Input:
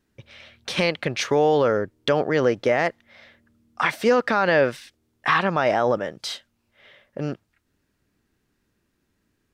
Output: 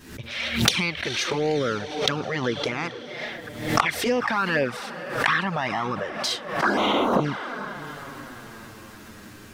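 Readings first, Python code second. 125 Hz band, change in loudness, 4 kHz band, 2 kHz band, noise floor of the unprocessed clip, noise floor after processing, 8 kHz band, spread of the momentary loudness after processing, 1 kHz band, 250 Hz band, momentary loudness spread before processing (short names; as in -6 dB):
+0.5 dB, -2.5 dB, +5.0 dB, +0.5 dB, -73 dBFS, -44 dBFS, +6.5 dB, 19 LU, -1.0 dB, +0.5 dB, 13 LU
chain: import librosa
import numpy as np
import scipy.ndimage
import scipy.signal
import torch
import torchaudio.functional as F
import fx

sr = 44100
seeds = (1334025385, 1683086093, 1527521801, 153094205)

p1 = fx.recorder_agc(x, sr, target_db=-15.5, rise_db_per_s=47.0, max_gain_db=30)
p2 = fx.low_shelf(p1, sr, hz=120.0, db=-6.0)
p3 = fx.spec_paint(p2, sr, seeds[0], shape='noise', start_s=6.62, length_s=0.59, low_hz=200.0, high_hz=1700.0, level_db=-17.0)
p4 = p3 + fx.echo_diffused(p3, sr, ms=479, feedback_pct=52, wet_db=-13.0, dry=0)
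p5 = fx.env_flanger(p4, sr, rest_ms=11.8, full_db=-13.0)
p6 = 10.0 ** (-6.0 / 20.0) * np.tanh(p5 / 10.0 ** (-6.0 / 20.0))
p7 = fx.peak_eq(p6, sr, hz=570.0, db=-4.5, octaves=1.5)
p8 = fx.pre_swell(p7, sr, db_per_s=83.0)
y = p8 * librosa.db_to_amplitude(1.5)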